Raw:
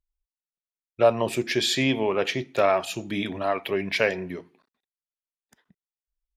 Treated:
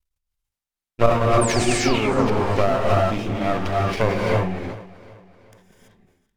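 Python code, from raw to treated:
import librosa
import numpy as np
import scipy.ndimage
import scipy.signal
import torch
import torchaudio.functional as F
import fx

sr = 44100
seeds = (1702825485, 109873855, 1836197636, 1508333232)

y = fx.env_lowpass_down(x, sr, base_hz=880.0, full_db=-18.0)
y = fx.high_shelf(y, sr, hz=3000.0, db=-10.5, at=(1.55, 3.86))
y = np.maximum(y, 0.0)
y = fx.spec_paint(y, sr, seeds[0], shape='fall', start_s=1.41, length_s=0.55, low_hz=890.0, high_hz=9500.0, level_db=-38.0)
y = fx.step_gate(y, sr, bpm=170, pattern='xx.x.xxx', floor_db=-12.0, edge_ms=4.5)
y = fx.echo_feedback(y, sr, ms=382, feedback_pct=46, wet_db=-19.0)
y = fx.rev_gated(y, sr, seeds[1], gate_ms=360, shape='rising', drr_db=-3.0)
y = fx.sustainer(y, sr, db_per_s=75.0)
y = y * librosa.db_to_amplitude(6.5)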